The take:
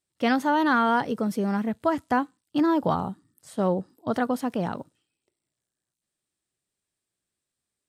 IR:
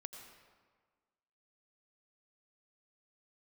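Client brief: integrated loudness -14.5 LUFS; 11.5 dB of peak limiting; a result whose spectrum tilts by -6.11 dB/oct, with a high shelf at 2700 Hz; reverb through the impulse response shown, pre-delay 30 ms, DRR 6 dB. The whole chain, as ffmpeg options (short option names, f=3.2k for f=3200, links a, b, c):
-filter_complex "[0:a]highshelf=f=2.7k:g=-6,alimiter=limit=-23dB:level=0:latency=1,asplit=2[a][b];[1:a]atrim=start_sample=2205,adelay=30[c];[b][c]afir=irnorm=-1:irlink=0,volume=-2dB[d];[a][d]amix=inputs=2:normalize=0,volume=17dB"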